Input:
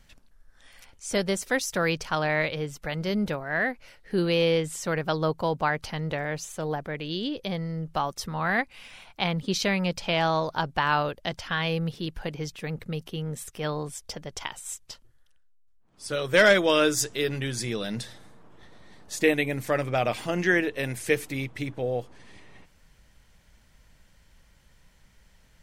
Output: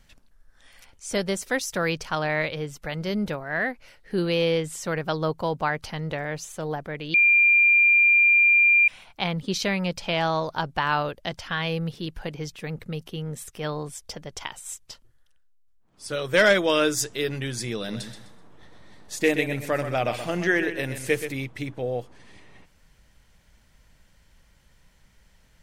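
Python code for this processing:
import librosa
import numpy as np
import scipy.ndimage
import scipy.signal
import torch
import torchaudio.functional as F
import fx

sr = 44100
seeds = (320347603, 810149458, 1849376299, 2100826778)

y = fx.echo_feedback(x, sr, ms=127, feedback_pct=28, wet_db=-9.5, at=(17.76, 21.32))
y = fx.edit(y, sr, fx.bleep(start_s=7.14, length_s=1.74, hz=2390.0, db=-14.0), tone=tone)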